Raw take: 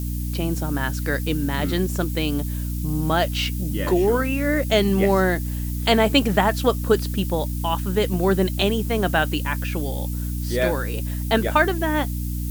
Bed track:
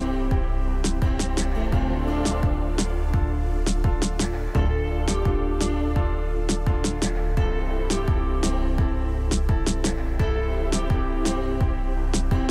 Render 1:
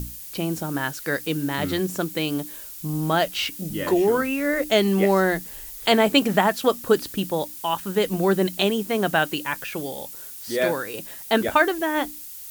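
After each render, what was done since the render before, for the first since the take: hum notches 60/120/180/240/300 Hz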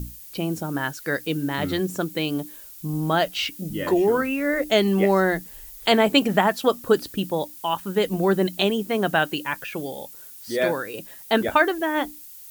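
noise reduction 6 dB, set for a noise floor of -39 dBFS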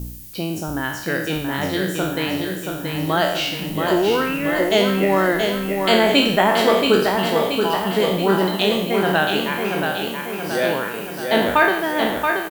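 spectral sustain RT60 0.73 s; feedback delay 678 ms, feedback 57%, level -5 dB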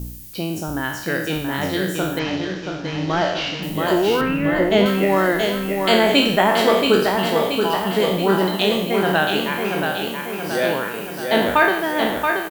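2.19–3.63 s: CVSD coder 32 kbps; 4.21–4.86 s: tone controls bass +8 dB, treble -11 dB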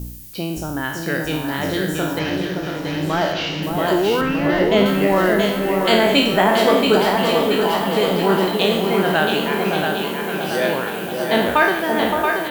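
echo whose repeats swap between lows and highs 568 ms, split 1.2 kHz, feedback 59%, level -5 dB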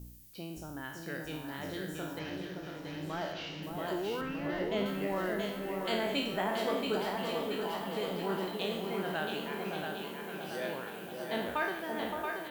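trim -17.5 dB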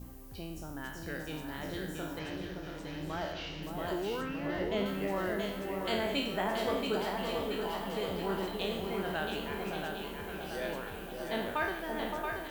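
add bed track -28.5 dB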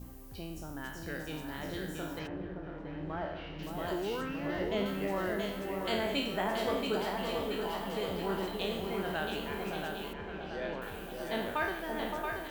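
2.26–3.58 s: low-pass 1.3 kHz -> 2.1 kHz; 10.13–10.82 s: distance through air 170 m

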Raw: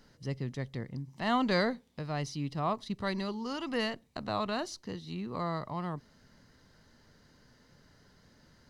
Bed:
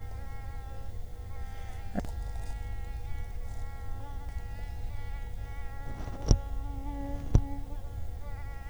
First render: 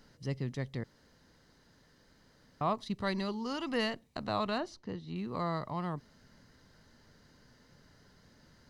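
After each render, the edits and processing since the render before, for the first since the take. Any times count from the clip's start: 0.84–2.61 s: room tone; 4.58–5.16 s: low-pass 1.8 kHz 6 dB/octave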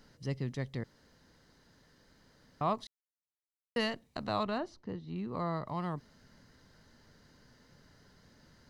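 2.87–3.76 s: mute; 4.43–5.67 s: treble shelf 2.3 kHz -8 dB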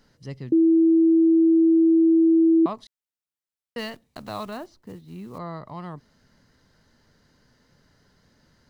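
0.52–2.66 s: bleep 327 Hz -13.5 dBFS; 3.78–5.39 s: block-companded coder 5-bit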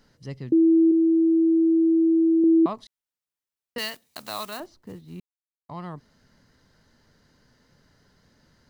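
0.91–2.44 s: band-stop 360 Hz, Q 6.2; 3.78–4.60 s: tilt EQ +3.5 dB/octave; 5.20–5.69 s: mute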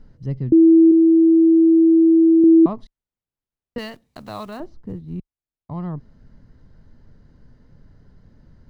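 tilt EQ -4 dB/octave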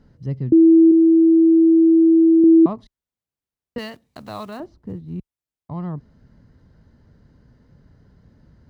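high-pass 46 Hz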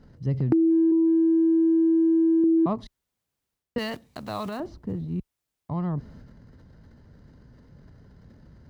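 transient shaper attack +1 dB, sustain +8 dB; compression 6:1, threshold -19 dBFS, peak gain reduction 9.5 dB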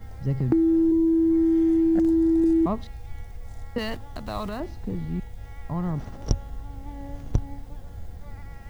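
add bed -0.5 dB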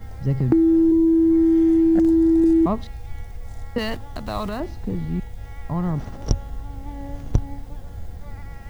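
trim +4 dB; peak limiter -3 dBFS, peak gain reduction 1.5 dB

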